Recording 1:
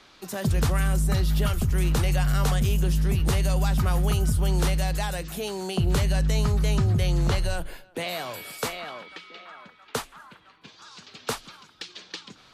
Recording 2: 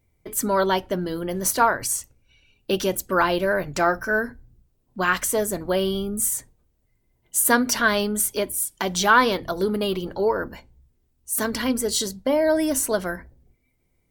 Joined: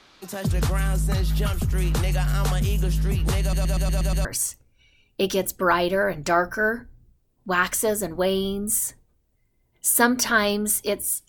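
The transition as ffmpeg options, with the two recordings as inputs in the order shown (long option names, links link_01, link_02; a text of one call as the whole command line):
ffmpeg -i cue0.wav -i cue1.wav -filter_complex "[0:a]apad=whole_dur=11.28,atrim=end=11.28,asplit=7[link_01][link_02][link_03][link_04][link_05][link_06][link_07];[link_01]atrim=end=3.532[link_08];[link_02]atrim=start=3.408:end=3.532[link_09];[link_03]atrim=start=3.408:end=3.532[link_10];[link_04]atrim=start=3.408:end=3.532[link_11];[link_05]atrim=start=3.408:end=3.532[link_12];[link_06]atrim=start=3.408:end=3.532[link_13];[link_07]atrim=start=3.408:end=3.532[link_14];[1:a]atrim=start=1.748:end=8.78[link_15];[link_08][link_09]acrossfade=duration=0.004:curve1=hsin:curve2=hsin[link_16];[link_16][link_10]acrossfade=duration=0.004:curve1=hsin:curve2=hsin[link_17];[link_17][link_11]acrossfade=duration=0.004:curve1=hsin:curve2=hsin[link_18];[link_18][link_12]acrossfade=duration=0.004:curve1=hsin:curve2=hsin[link_19];[link_19][link_13]acrossfade=duration=0.004:curve1=hsin:curve2=hsin[link_20];[link_20][link_14]acrossfade=duration=0.004:curve1=hsin:curve2=hsin[link_21];[link_21][link_15]acrossfade=duration=0.004:curve1=hsin:curve2=hsin" out.wav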